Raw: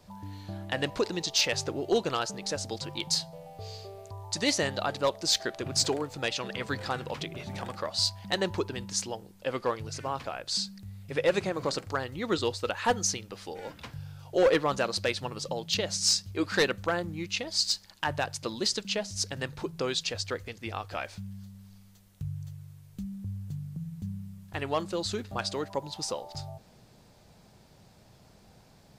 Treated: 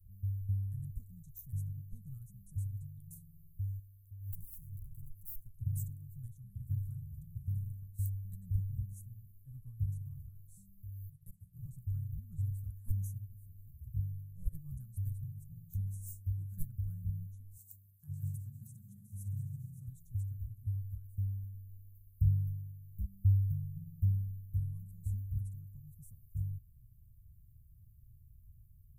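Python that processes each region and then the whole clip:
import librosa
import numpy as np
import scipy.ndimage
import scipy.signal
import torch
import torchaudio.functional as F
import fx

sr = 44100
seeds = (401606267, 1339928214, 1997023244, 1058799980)

y = fx.chain(x, sr, fx.low_shelf(hz=350.0, db=-7.5),
    fx.tube_stage(drive_db=33.0, bias=0.5),
    fx.pre_swell(db_per_s=81.0), at=(3.79, 5.54))
y = fx.chain(y, sr, fx.level_steps(step_db=24),
    fx.high_shelf(hz=5600.0, db=11.0), at=(10.83, 11.54))
y = fx.chain(y, sr, fx.highpass(hz=110.0, slope=24),
    fx.echo_opening(ms=141, hz=200, octaves=2, feedback_pct=70, wet_db=0), at=(17.57, 19.88))
y = scipy.signal.sosfilt(scipy.signal.cheby2(4, 60, [350.0, 5100.0], 'bandstop', fs=sr, output='sos'), y)
y = fx.low_shelf(y, sr, hz=77.0, db=7.5)
y = fx.upward_expand(y, sr, threshold_db=-50.0, expansion=1.5)
y = y * librosa.db_to_amplitude(10.0)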